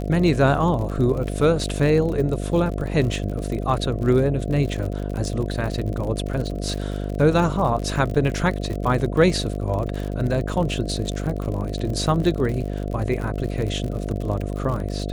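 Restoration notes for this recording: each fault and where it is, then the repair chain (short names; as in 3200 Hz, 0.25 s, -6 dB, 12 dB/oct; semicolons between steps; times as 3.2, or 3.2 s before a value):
buzz 50 Hz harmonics 14 -27 dBFS
crackle 54/s -28 dBFS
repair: de-click; de-hum 50 Hz, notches 14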